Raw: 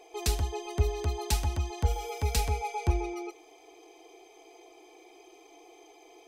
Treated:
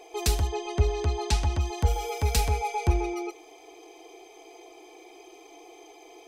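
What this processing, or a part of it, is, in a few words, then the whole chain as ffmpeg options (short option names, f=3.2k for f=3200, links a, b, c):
parallel distortion: -filter_complex "[0:a]asplit=2[a][b];[b]asoftclip=type=hard:threshold=-31dB,volume=-10dB[c];[a][c]amix=inputs=2:normalize=0,asettb=1/sr,asplit=3[d][e][f];[d]atrim=end=0.474[g];[e]atrim=start=0.47:end=1.61,asetpts=PTS-STARTPTS,afade=t=in:d=0.004:c=qsin,afade=t=out:st=1.136:d=0.004:c=qsin,lowpass=6.6k[h];[f]atrim=start=1.606[i];[g][h]acrossfade=d=0.004:c1=hsin:c2=qsin[j];[j][i]acrossfade=d=0.004:c1=qsin:c2=hsin,volume=2.5dB"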